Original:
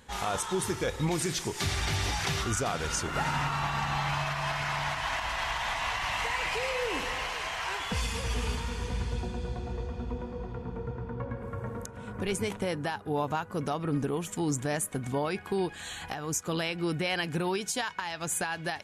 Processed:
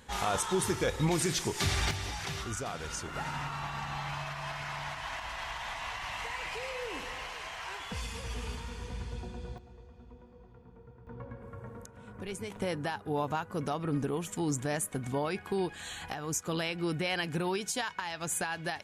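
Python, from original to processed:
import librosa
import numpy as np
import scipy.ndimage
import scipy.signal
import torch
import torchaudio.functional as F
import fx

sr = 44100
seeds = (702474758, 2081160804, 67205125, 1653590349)

y = fx.gain(x, sr, db=fx.steps((0.0, 0.5), (1.91, -7.0), (9.58, -17.5), (11.07, -8.5), (12.56, -2.0)))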